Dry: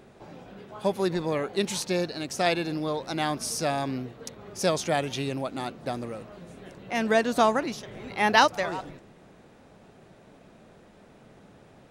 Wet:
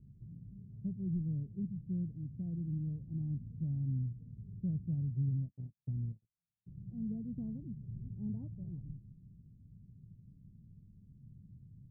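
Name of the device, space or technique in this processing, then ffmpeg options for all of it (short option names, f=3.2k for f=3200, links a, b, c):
the neighbour's flat through the wall: -filter_complex "[0:a]lowpass=f=160:w=0.5412,lowpass=f=160:w=1.3066,equalizer=f=110:t=o:w=0.78:g=5,asplit=3[a][b][c];[a]afade=t=out:st=5.04:d=0.02[d];[b]agate=range=-53dB:threshold=-40dB:ratio=16:detection=peak,afade=t=in:st=5.04:d=0.02,afade=t=out:st=6.66:d=0.02[e];[c]afade=t=in:st=6.66:d=0.02[f];[d][e][f]amix=inputs=3:normalize=0,volume=2dB"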